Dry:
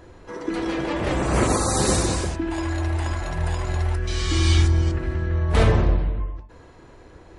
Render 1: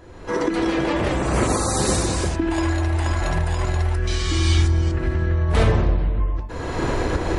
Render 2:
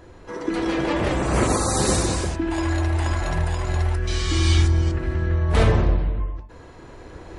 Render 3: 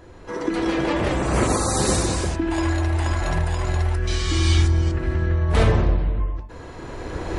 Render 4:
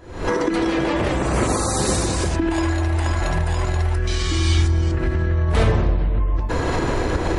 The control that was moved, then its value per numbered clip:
camcorder AGC, rising by: 34, 5.4, 14, 91 dB per second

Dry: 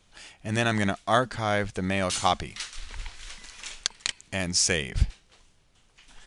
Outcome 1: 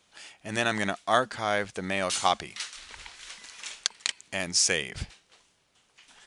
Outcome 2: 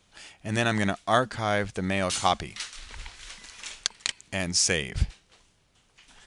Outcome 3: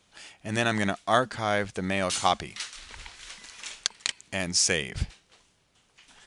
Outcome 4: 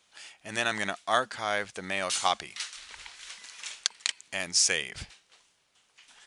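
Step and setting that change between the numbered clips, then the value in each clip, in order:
high-pass filter, corner frequency: 350, 51, 140, 890 Hertz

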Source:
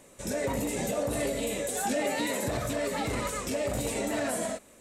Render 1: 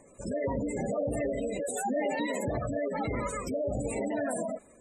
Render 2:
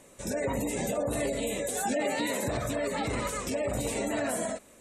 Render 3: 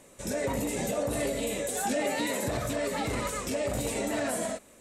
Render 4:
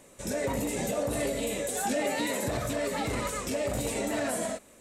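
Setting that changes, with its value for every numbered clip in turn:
gate on every frequency bin, under each frame's peak: −15, −30, −45, −60 decibels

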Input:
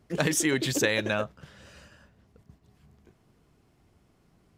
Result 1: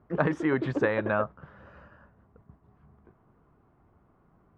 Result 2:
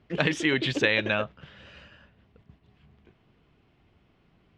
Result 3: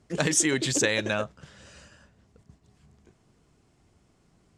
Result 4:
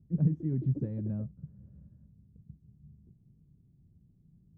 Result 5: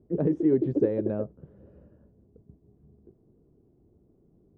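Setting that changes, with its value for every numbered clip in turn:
low-pass with resonance, frequency: 1,200, 3,000, 7,900, 160, 400 Hertz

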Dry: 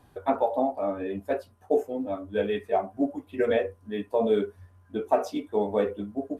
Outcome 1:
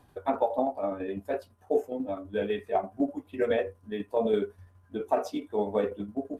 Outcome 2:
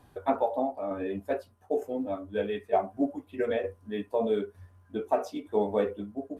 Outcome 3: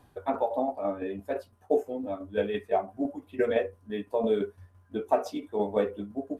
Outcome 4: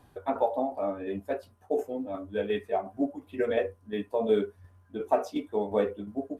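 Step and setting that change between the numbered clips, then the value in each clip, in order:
shaped tremolo, speed: 12, 1.1, 5.9, 2.8 Hertz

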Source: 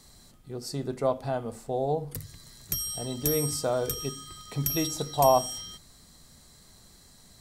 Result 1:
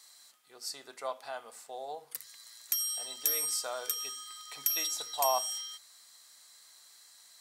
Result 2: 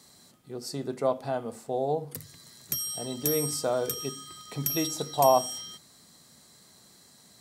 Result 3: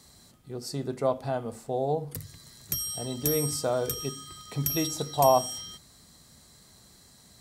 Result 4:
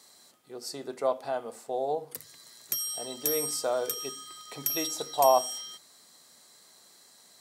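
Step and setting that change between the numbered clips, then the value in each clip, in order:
high-pass filter, corner frequency: 1,200, 160, 60, 420 Hertz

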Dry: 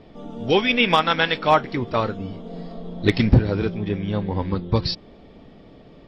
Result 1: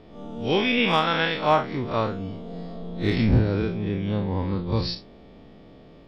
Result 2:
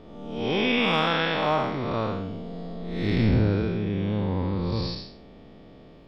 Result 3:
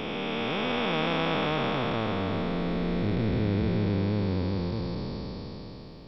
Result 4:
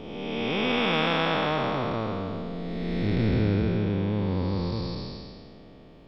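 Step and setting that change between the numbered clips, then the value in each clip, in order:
spectrum smeared in time, width: 93, 244, 1,600, 647 milliseconds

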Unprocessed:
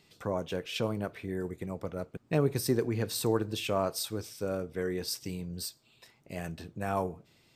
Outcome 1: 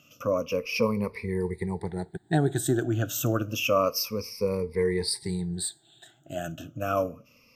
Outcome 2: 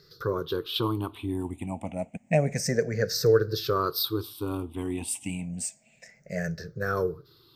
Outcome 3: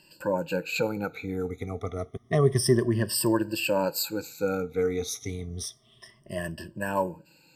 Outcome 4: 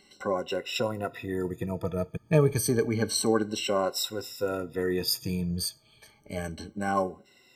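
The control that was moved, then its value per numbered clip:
rippled gain that drifts along the octave scale, ripples per octave: 0.88, 0.58, 1.3, 2.1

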